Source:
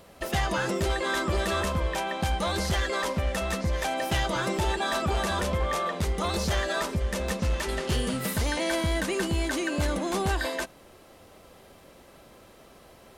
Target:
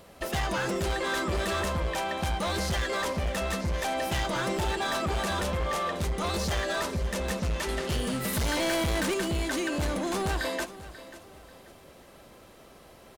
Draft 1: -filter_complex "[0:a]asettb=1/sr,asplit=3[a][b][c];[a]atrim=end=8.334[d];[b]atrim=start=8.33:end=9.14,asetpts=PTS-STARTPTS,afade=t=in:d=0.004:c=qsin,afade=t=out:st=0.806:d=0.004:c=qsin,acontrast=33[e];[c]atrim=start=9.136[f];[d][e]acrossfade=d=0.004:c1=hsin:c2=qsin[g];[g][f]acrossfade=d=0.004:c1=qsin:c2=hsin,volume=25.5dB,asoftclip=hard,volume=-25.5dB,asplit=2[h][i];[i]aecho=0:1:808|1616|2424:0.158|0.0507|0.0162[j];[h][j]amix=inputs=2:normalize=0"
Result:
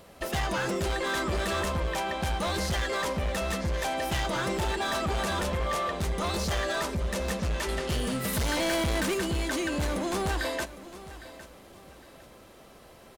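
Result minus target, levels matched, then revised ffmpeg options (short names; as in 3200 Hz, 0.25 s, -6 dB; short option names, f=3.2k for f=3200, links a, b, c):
echo 0.27 s late
-filter_complex "[0:a]asettb=1/sr,asplit=3[a][b][c];[a]atrim=end=8.334[d];[b]atrim=start=8.33:end=9.14,asetpts=PTS-STARTPTS,afade=t=in:d=0.004:c=qsin,afade=t=out:st=0.806:d=0.004:c=qsin,acontrast=33[e];[c]atrim=start=9.136[f];[d][e]acrossfade=d=0.004:c1=hsin:c2=qsin[g];[g][f]acrossfade=d=0.004:c1=qsin:c2=hsin,volume=25.5dB,asoftclip=hard,volume=-25.5dB,asplit=2[h][i];[i]aecho=0:1:538|1076|1614:0.158|0.0507|0.0162[j];[h][j]amix=inputs=2:normalize=0"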